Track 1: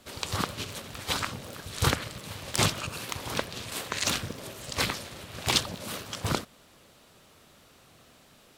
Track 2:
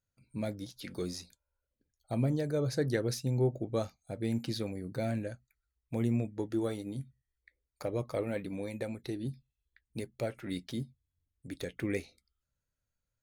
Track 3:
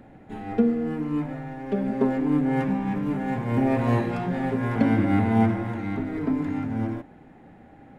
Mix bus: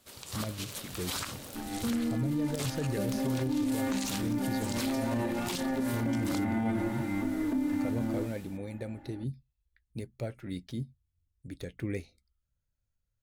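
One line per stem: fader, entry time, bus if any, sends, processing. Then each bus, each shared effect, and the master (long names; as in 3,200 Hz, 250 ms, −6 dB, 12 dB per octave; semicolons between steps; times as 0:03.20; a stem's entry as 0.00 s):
−11.0 dB, 0.00 s, no send, high-shelf EQ 6,300 Hz +11 dB; automatic gain control
−4.5 dB, 0.00 s, no send, low-shelf EQ 170 Hz +11.5 dB
−6.0 dB, 1.25 s, no send, comb filter 3.4 ms, depth 96%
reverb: not used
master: brickwall limiter −23 dBFS, peak gain reduction 13 dB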